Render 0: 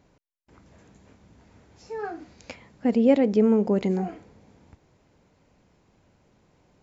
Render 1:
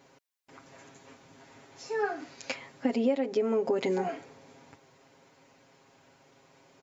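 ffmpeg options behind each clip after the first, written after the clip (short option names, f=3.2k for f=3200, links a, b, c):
-af "highpass=f=560:p=1,aecho=1:1:7.4:0.87,acompressor=threshold=-29dB:ratio=8,volume=5dB"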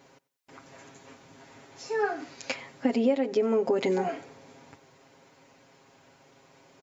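-af "aecho=1:1:93|186:0.0708|0.0198,volume=2.5dB"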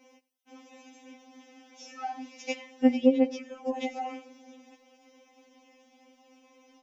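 -af "afftfilt=real='re*3.46*eq(mod(b,12),0)':imag='im*3.46*eq(mod(b,12),0)':win_size=2048:overlap=0.75"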